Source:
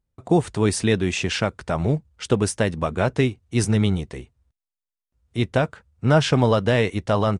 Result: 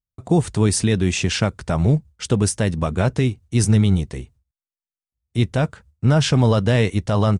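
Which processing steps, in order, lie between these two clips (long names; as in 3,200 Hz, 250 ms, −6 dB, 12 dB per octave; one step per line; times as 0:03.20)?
noise gate with hold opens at −50 dBFS
bass and treble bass +7 dB, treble +6 dB
brickwall limiter −8 dBFS, peak gain reduction 5.5 dB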